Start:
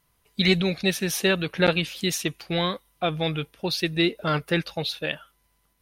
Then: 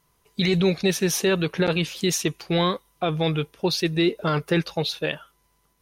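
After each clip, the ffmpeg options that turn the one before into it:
ffmpeg -i in.wav -af "equalizer=frequency=160:width_type=o:width=0.67:gain=4,equalizer=frequency=400:width_type=o:width=0.67:gain=7,equalizer=frequency=1000:width_type=o:width=0.67:gain=5,equalizer=frequency=6300:width_type=o:width=0.67:gain=5,alimiter=limit=-12dB:level=0:latency=1:release=13" out.wav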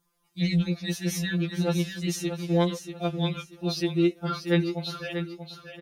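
ffmpeg -i in.wav -af "acrusher=bits=11:mix=0:aa=0.000001,aecho=1:1:636|1272|1908|2544:0.376|0.113|0.0338|0.0101,afftfilt=real='re*2.83*eq(mod(b,8),0)':imag='im*2.83*eq(mod(b,8),0)':win_size=2048:overlap=0.75,volume=-6dB" out.wav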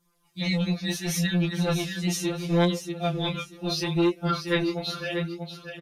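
ffmpeg -i in.wav -filter_complex "[0:a]acrossover=split=890[link_01][link_02];[link_01]asoftclip=type=tanh:threshold=-24.5dB[link_03];[link_03][link_02]amix=inputs=2:normalize=0,flanger=delay=17:depth=4.7:speed=0.72,aresample=32000,aresample=44100,volume=6.5dB" out.wav

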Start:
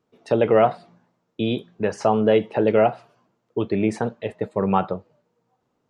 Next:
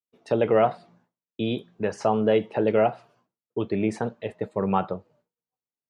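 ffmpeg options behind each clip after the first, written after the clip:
ffmpeg -i in.wav -af "agate=range=-33dB:threshold=-54dB:ratio=3:detection=peak,volume=-3.5dB" out.wav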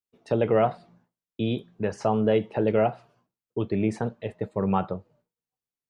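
ffmpeg -i in.wav -af "lowshelf=frequency=140:gain=10,volume=-2.5dB" out.wav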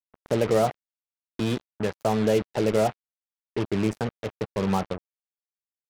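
ffmpeg -i in.wav -filter_complex "[0:a]acrossover=split=960[link_01][link_02];[link_01]acompressor=mode=upward:threshold=-29dB:ratio=2.5[link_03];[link_02]alimiter=level_in=1.5dB:limit=-24dB:level=0:latency=1:release=209,volume=-1.5dB[link_04];[link_03][link_04]amix=inputs=2:normalize=0,acrusher=bits=4:mix=0:aa=0.5" out.wav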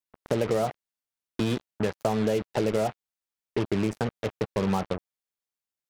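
ffmpeg -i in.wav -af "acompressor=threshold=-24dB:ratio=6,volume=2.5dB" out.wav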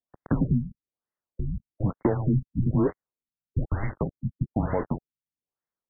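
ffmpeg -i in.wav -af "acrusher=bits=4:mode=log:mix=0:aa=0.000001,highpass=frequency=340:width_type=q:width=0.5412,highpass=frequency=340:width_type=q:width=1.307,lowpass=frequency=3300:width_type=q:width=0.5176,lowpass=frequency=3300:width_type=q:width=0.7071,lowpass=frequency=3300:width_type=q:width=1.932,afreqshift=-310,afftfilt=real='re*lt(b*sr/1024,220*pow(2200/220,0.5+0.5*sin(2*PI*1.1*pts/sr)))':imag='im*lt(b*sr/1024,220*pow(2200/220,0.5+0.5*sin(2*PI*1.1*pts/sr)))':win_size=1024:overlap=0.75,volume=4dB" out.wav

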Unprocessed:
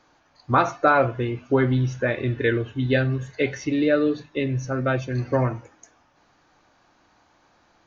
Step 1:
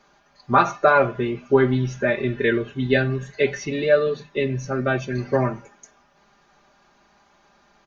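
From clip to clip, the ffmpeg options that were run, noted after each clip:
ffmpeg -i in.wav -af "aecho=1:1:5:0.87" out.wav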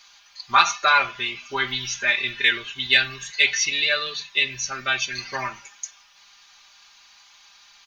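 ffmpeg -i in.wav -af "equalizer=frequency=125:width_type=o:width=1:gain=-9,equalizer=frequency=250:width_type=o:width=1:gain=-8,equalizer=frequency=500:width_type=o:width=1:gain=-11,equalizer=frequency=1000:width_type=o:width=1:gain=7,equalizer=frequency=2000:width_type=o:width=1:gain=12,equalizer=frequency=4000:width_type=o:width=1:gain=4,aexciter=amount=8.6:drive=2.8:freq=2700,volume=-7dB" out.wav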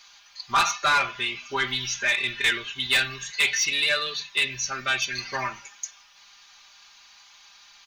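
ffmpeg -i in.wav -af "asoftclip=type=tanh:threshold=-15dB" out.wav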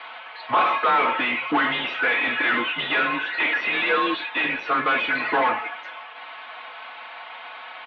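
ffmpeg -i in.wav -filter_complex "[0:a]aemphasis=mode=reproduction:type=riaa,asplit=2[link_01][link_02];[link_02]highpass=frequency=720:poles=1,volume=31dB,asoftclip=type=tanh:threshold=-10.5dB[link_03];[link_01][link_03]amix=inputs=2:normalize=0,lowpass=frequency=1500:poles=1,volume=-6dB,highpass=frequency=390:width_type=q:width=0.5412,highpass=frequency=390:width_type=q:width=1.307,lowpass=frequency=3500:width_type=q:width=0.5176,lowpass=frequency=3500:width_type=q:width=0.7071,lowpass=frequency=3500:width_type=q:width=1.932,afreqshift=-110" out.wav

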